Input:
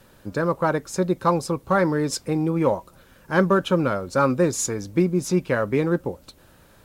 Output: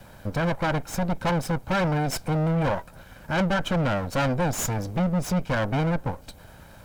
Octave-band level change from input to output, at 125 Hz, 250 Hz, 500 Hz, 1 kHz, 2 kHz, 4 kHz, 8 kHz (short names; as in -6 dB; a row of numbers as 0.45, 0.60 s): +1.5, -3.5, -6.0, -2.5, -1.0, +1.0, -4.0 dB